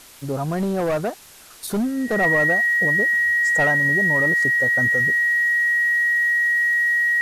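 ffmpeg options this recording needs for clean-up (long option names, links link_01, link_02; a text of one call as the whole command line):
ffmpeg -i in.wav -af "adeclick=threshold=4,bandreject=frequency=1900:width=30,afftdn=noise_reduction=30:noise_floor=-35" out.wav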